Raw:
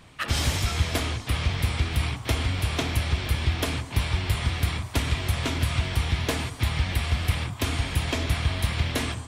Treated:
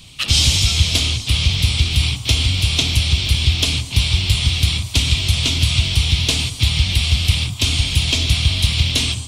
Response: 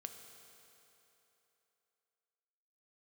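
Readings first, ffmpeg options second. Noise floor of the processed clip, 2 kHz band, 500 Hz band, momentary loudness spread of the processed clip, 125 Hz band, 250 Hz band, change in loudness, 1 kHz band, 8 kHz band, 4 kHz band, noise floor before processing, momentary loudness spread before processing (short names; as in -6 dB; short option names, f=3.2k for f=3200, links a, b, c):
-31 dBFS, +7.0 dB, -1.5 dB, 3 LU, +8.0 dB, +4.0 dB, +10.0 dB, -2.5 dB, +13.0 dB, +15.5 dB, -40 dBFS, 2 LU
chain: -filter_complex "[0:a]aexciter=amount=15.4:drive=6:freq=2.7k,bass=f=250:g=11,treble=f=4k:g=-11,acrossover=split=9600[a][b];[b]acompressor=threshold=-40dB:ratio=4:attack=1:release=60[c];[a][c]amix=inputs=2:normalize=0,volume=-2.5dB"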